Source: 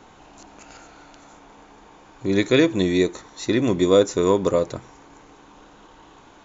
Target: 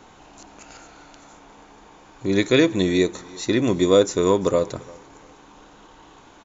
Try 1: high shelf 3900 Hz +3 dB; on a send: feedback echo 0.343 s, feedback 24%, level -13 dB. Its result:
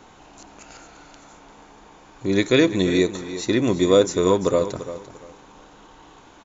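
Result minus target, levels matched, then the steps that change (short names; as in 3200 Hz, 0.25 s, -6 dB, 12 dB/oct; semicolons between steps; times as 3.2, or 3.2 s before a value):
echo-to-direct +10.5 dB
change: feedback echo 0.343 s, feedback 24%, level -23.5 dB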